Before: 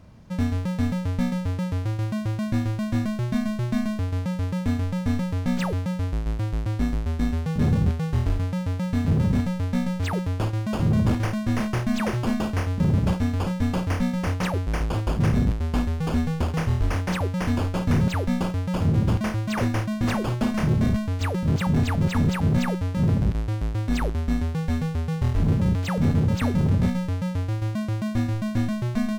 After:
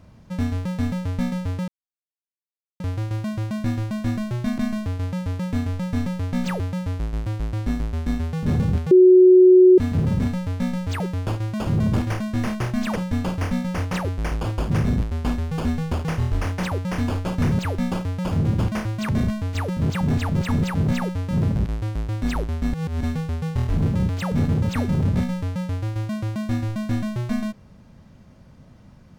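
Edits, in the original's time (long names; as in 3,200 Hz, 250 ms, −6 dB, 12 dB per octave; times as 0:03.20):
0:01.68: splice in silence 1.12 s
0:03.46–0:03.71: remove
0:08.04–0:08.91: beep over 368 Hz −7.5 dBFS
0:12.09–0:13.45: remove
0:19.58–0:20.75: remove
0:24.39–0:24.69: reverse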